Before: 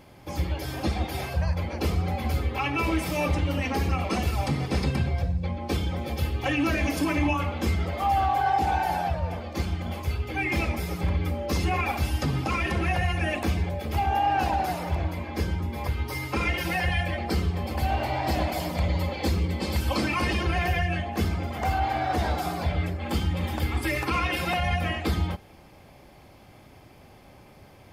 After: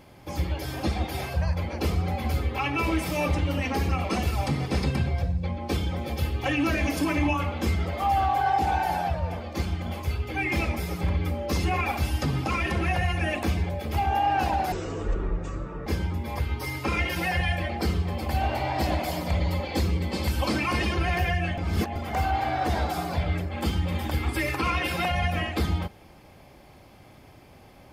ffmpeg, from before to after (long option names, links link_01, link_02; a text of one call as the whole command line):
ffmpeg -i in.wav -filter_complex "[0:a]asplit=5[link_01][link_02][link_03][link_04][link_05];[link_01]atrim=end=14.724[link_06];[link_02]atrim=start=14.72:end=15.35,asetpts=PTS-STARTPTS,asetrate=24255,aresample=44100[link_07];[link_03]atrim=start=15.346:end=21.062[link_08];[link_04]atrim=start=21.058:end=21.442,asetpts=PTS-STARTPTS,areverse[link_09];[link_05]atrim=start=21.438[link_10];[link_06][link_07]acrossfade=duration=0.004:curve1=hsin:curve2=hsin[link_11];[link_11][link_08]acrossfade=duration=0.004:curve1=hsin:curve2=hsin[link_12];[link_12][link_09]acrossfade=duration=0.004:curve1=hsin:curve2=hsin[link_13];[link_13][link_10]acrossfade=duration=0.004:curve1=hsin:curve2=hsin" out.wav